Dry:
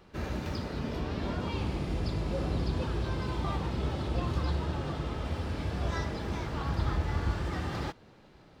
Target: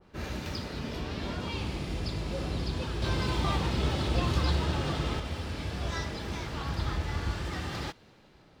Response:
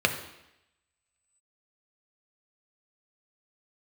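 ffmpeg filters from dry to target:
-filter_complex "[0:a]asettb=1/sr,asplit=3[link_01][link_02][link_03];[link_01]atrim=end=3.024[link_04];[link_02]atrim=start=3.02:end=5.2,asetpts=PTS-STARTPTS,afade=type=in:duration=0.004:curve=qsin,afade=type=out:start_time=2.176:duration=0.004:curve=qsin,acontrast=28[link_05];[link_03]atrim=start=5.196[link_06];[link_04][link_05]acrossfade=duration=0.004:curve1=hsin:curve2=qsin[link_07];[link_07][link_06]acrossfade=duration=0.004:curve1=qsin:curve2=hsin,adynamicequalizer=threshold=0.00316:dfrequency=1800:dqfactor=0.7:tfrequency=1800:tqfactor=0.7:attack=5:release=100:ratio=0.375:range=3.5:mode=boostabove:tftype=highshelf,volume=-2dB"

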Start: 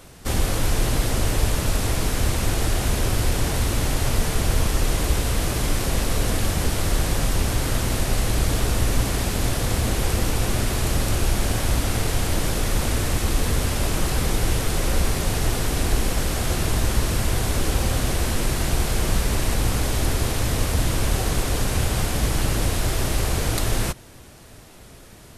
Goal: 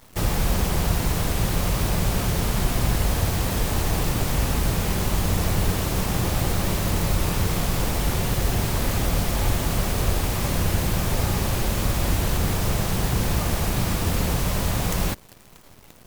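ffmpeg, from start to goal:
ffmpeg -i in.wav -af "asetrate=69678,aresample=44100,acrusher=bits=7:dc=4:mix=0:aa=0.000001,volume=-1.5dB" out.wav

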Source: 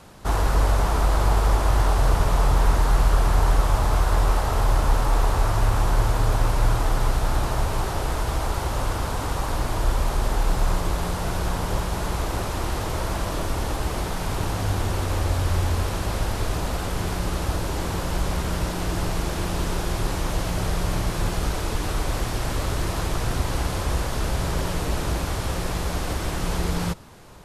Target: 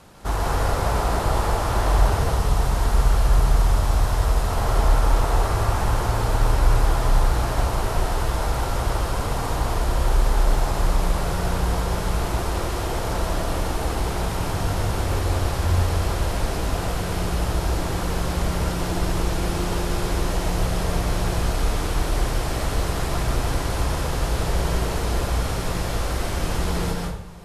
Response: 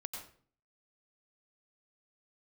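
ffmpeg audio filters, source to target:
-filter_complex "[0:a]asettb=1/sr,asplit=3[link_01][link_02][link_03];[link_01]atrim=end=2.184[link_04];[link_02]atrim=start=2.18:end=4.5,asetpts=PTS-STARTPTS,afade=type=in:duration=0.004:curve=qsin,afade=type=out:start_time=2.316:duration=0.004:curve=qsin,acrossover=split=240|3000[link_05][link_06][link_07];[link_06]acompressor=threshold=-29dB:ratio=6[link_08];[link_05][link_08][link_07]amix=inputs=3:normalize=0[link_09];[link_03]atrim=start=4.496[link_10];[link_04][link_09]acrossfade=duration=0.004:curve1=hsin:curve2=qsin[link_11];[link_11][link_10]acrossfade=duration=0.004:curve1=qsin:curve2=hsin[link_12];[1:a]atrim=start_sample=2205,asetrate=28224,aresample=44100[link_13];[link_12][link_13]afir=irnorm=-1:irlink=0"

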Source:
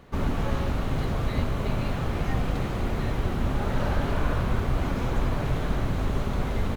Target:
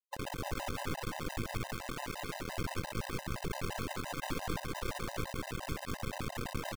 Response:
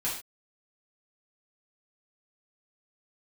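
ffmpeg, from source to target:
-filter_complex "[0:a]aemphasis=mode=reproduction:type=50kf,highpass=frequency=160:width_type=q:width=0.5412,highpass=frequency=160:width_type=q:width=1.307,lowpass=frequency=2700:width_type=q:width=0.5176,lowpass=frequency=2700:width_type=q:width=0.7071,lowpass=frequency=2700:width_type=q:width=1.932,afreqshift=-290,alimiter=level_in=6dB:limit=-24dB:level=0:latency=1:release=120,volume=-6dB,asettb=1/sr,asplit=3[link_01][link_02][link_03];[link_01]atrim=end=1.734[link_04];[link_02]atrim=start=1.73:end=2.56,asetpts=PTS-STARTPTS,afade=type=in:duration=0.004:curve=qsin,afade=type=out:start_time=0.826:duration=0.004:curve=qsin,highpass=frequency=73:width=0.5412,highpass=frequency=73:width=1.3066[link_05];[link_03]atrim=start=2.556[link_06];[link_04][link_05]acrossfade=duration=0.004:curve1=hsin:curve2=qsin[link_07];[link_07][link_06]acrossfade=duration=0.004:curve1=qsin:curve2=hsin,aeval=exprs='max(val(0),0)':channel_layout=same,acrusher=bits=5:mix=0:aa=0.000001,asplit=2[link_08][link_09];[link_09]aecho=0:1:194:0.596[link_10];[link_08][link_10]amix=inputs=2:normalize=0,afftfilt=real='re*gt(sin(2*PI*5.8*pts/sr)*(1-2*mod(floor(b*sr/1024/520),2)),0)':imag='im*gt(sin(2*PI*5.8*pts/sr)*(1-2*mod(floor(b*sr/1024/520),2)),0)':win_size=1024:overlap=0.75,volume=3dB"

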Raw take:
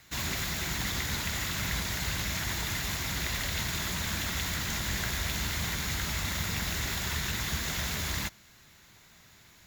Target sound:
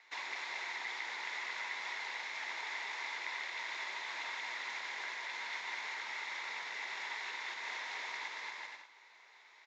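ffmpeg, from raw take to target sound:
ffmpeg -i in.wav -filter_complex "[0:a]asplit=2[link_01][link_02];[link_02]aecho=0:1:230|379.5|476.7|539.8|580.9:0.631|0.398|0.251|0.158|0.1[link_03];[link_01][link_03]amix=inputs=2:normalize=0,acompressor=threshold=-32dB:ratio=4,highpass=frequency=460:width=0.5412,highpass=frequency=460:width=1.3066,equalizer=frequency=610:width_type=q:width=4:gain=-5,equalizer=frequency=910:width_type=q:width=4:gain=8,equalizer=frequency=1400:width_type=q:width=4:gain=-4,equalizer=frequency=2100:width_type=q:width=4:gain=7,equalizer=frequency=3000:width_type=q:width=4:gain=-5,equalizer=frequency=4500:width_type=q:width=4:gain=-4,lowpass=frequency=4800:width=0.5412,lowpass=frequency=4800:width=1.3066,volume=-4.5dB" out.wav

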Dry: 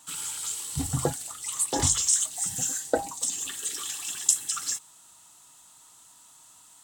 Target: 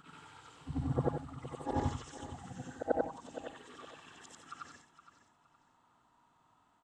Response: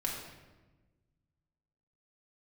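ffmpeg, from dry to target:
-filter_complex "[0:a]afftfilt=real='re':imag='-im':win_size=8192:overlap=0.75,lowpass=1400,equalizer=frequency=240:width=7.2:gain=4,asplit=2[link_01][link_02];[link_02]aecho=0:1:466|932|1398:0.224|0.0627|0.0176[link_03];[link_01][link_03]amix=inputs=2:normalize=0"

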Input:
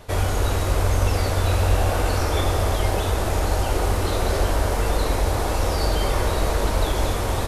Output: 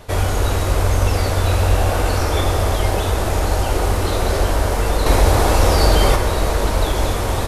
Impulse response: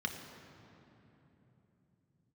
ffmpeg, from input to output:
-filter_complex "[0:a]asettb=1/sr,asplit=3[link_01][link_02][link_03];[link_01]atrim=end=5.064[link_04];[link_02]atrim=start=5.06:end=6.16,asetpts=PTS-STARTPTS,afade=type=in:duration=0.004:curve=qsin,afade=type=out:start_time=1.096:duration=0.004:curve=qsin,acontrast=23[link_05];[link_03]atrim=start=6.156[link_06];[link_04][link_05]acrossfade=duration=0.004:curve1=hsin:curve2=qsin[link_07];[link_07][link_06]acrossfade=duration=0.004:curve1=qsin:curve2=hsin,volume=3.5dB"

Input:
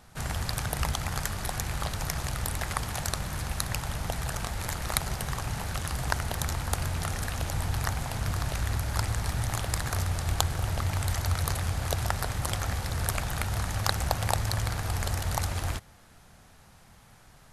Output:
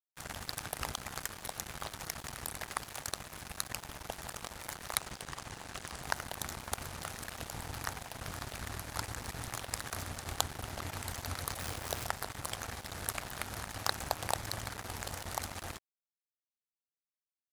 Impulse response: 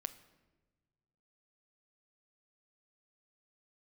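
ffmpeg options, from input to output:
-filter_complex "[0:a]asettb=1/sr,asplit=3[link_01][link_02][link_03];[link_01]atrim=end=4.974[link_04];[link_02]atrim=start=4.97:end=6.03,asetpts=PTS-STARTPTS,afade=type=in:duration=0.004:curve=qsin,afade=type=out:start_time=1.056:duration=0.004:curve=qsin,lowpass=frequency=10000:width=0.5412,lowpass=frequency=10000:width=1.3066[link_05];[link_03]atrim=start=6.026[link_06];[link_04][link_05]acrossfade=duration=0.004:curve1=hsin:curve2=qsin[link_07];[link_07][link_06]acrossfade=duration=0.004:curve1=qsin:curve2=hsin,asettb=1/sr,asplit=3[link_08][link_09][link_10];[link_08]atrim=end=11.594[link_11];[link_09]atrim=start=11.59:end=12.06,asetpts=PTS-STARTPTS,afade=type=in:duration=0.004:curve=qsin,afade=type=out:start_time=0.466:duration=0.004:curve=qsin,acrusher=bits=6:dc=4:mix=0:aa=0.000001[link_12];[link_10]atrim=start=12.056[link_13];[link_11][link_12]acrossfade=duration=0.004:curve1=hsin:curve2=qsin[link_14];[link_14][link_13]acrossfade=duration=0.004:curve1=qsin:curve2=hsin,aeval=exprs='sgn(val(0))*max(abs(val(0))-0.02,0)':channel_layout=same,lowshelf=frequency=170:gain=-10,volume=-3.5dB"

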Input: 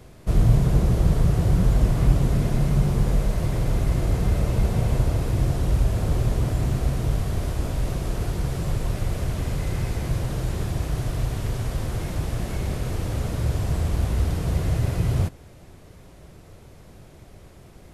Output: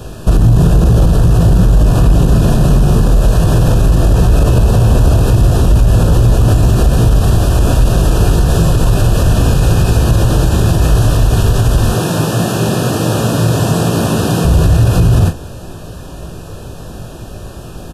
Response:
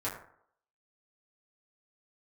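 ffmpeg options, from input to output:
-filter_complex "[0:a]asettb=1/sr,asplit=3[link_01][link_02][link_03];[link_01]atrim=end=11.904[link_04];[link_02]atrim=start=11.9:end=14.45,asetpts=PTS-STARTPTS,afade=type=in:duration=0.004:curve=qsin,afade=type=out:start_time=2.546:duration=0.004:curve=qsin,highpass=frequency=130:width=0.5412,highpass=frequency=130:width=1.3066[link_05];[link_03]atrim=start=14.446[link_06];[link_04][link_05]acrossfade=duration=0.004:curve1=hsin:curve2=qsin[link_07];[link_07][link_06]acrossfade=duration=0.004:curve1=qsin:curve2=hsin,asoftclip=type=tanh:threshold=-12.5dB,asuperstop=centerf=2100:order=20:qfactor=3.5,aecho=1:1:18|43:0.473|0.299,alimiter=level_in=18.5dB:limit=-1dB:release=50:level=0:latency=1,volume=-1dB"

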